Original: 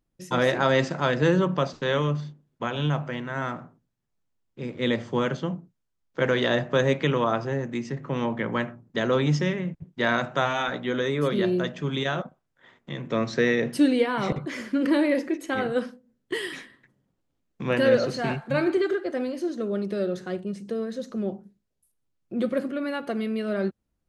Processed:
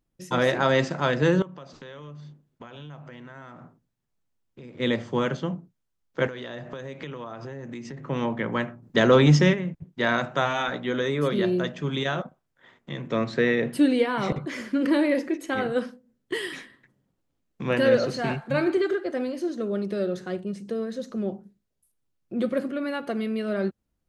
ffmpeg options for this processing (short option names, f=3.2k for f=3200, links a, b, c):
-filter_complex "[0:a]asettb=1/sr,asplit=3[a][b][c];[a]atrim=end=1.424[d];[b]atrim=start=1.42:end=4.8,asetpts=PTS-STARTPTS,afade=t=in:d=0.004:c=qsin,afade=t=out:st=3.376:d=0.004:c=qsin,acompressor=threshold=-40dB:ratio=6:attack=3.2:release=140:knee=1:detection=peak[e];[c]atrim=start=4.796[f];[d][e]acrossfade=d=0.004:c1=hsin:c2=qsin[g];[g][f]acrossfade=d=0.004:c1=qsin:c2=hsin,asettb=1/sr,asplit=3[h][i][j];[h]atrim=end=6.274[k];[i]atrim=start=6.27:end=7.98,asetpts=PTS-STARTPTS,afade=t=in:d=0.004:c=qsin,afade=t=out:st=1.706:d=0.004:c=qsin,acompressor=threshold=-33dB:ratio=8:attack=3.2:release=140:knee=1:detection=peak[l];[j]atrim=start=7.976[m];[k][l]acrossfade=d=0.004:c1=hsin:c2=qsin[n];[n][m]acrossfade=d=0.004:c1=qsin:c2=hsin,asplit=3[o][p][q];[o]afade=t=out:st=8.82:d=0.02[r];[p]acontrast=71,afade=t=in:st=8.82:d=0.02,afade=t=out:st=9.53:d=0.02[s];[q]afade=t=in:st=9.53:d=0.02[t];[r][s][t]amix=inputs=3:normalize=0,asettb=1/sr,asplit=3[u][v][w];[u]atrim=end=13.244[x];[v]atrim=start=13.24:end=13.9,asetpts=PTS-STARTPTS,afade=t=in:d=0.004:c=qsin,afade=t=out:st=0.656:d=0.004:c=qsin,equalizer=f=5.8k:t=o:w=0.46:g=-10.5[y];[w]atrim=start=13.896[z];[x][y]acrossfade=d=0.004:c1=hsin:c2=qsin[aa];[aa][z]acrossfade=d=0.004:c1=qsin:c2=hsin"